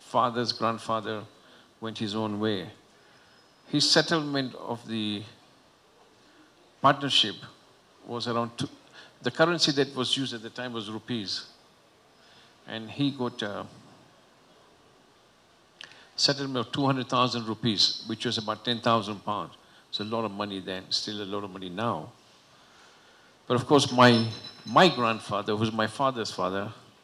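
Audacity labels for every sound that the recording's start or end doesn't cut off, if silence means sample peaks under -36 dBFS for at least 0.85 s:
3.710000	5.240000	sound
6.830000	11.440000	sound
12.690000	13.660000	sound
15.810000	22.070000	sound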